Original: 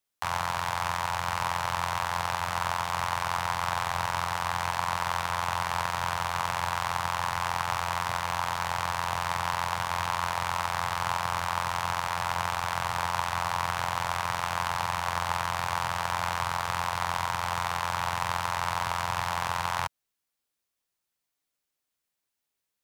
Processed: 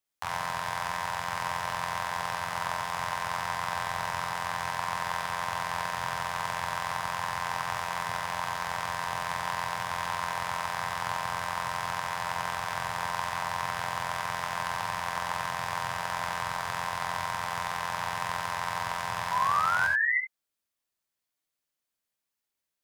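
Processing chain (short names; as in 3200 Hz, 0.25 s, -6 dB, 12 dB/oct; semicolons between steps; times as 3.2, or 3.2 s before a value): painted sound rise, 19.31–20.18, 960–2100 Hz -24 dBFS; non-linear reverb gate 0.1 s rising, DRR 3 dB; gain -4 dB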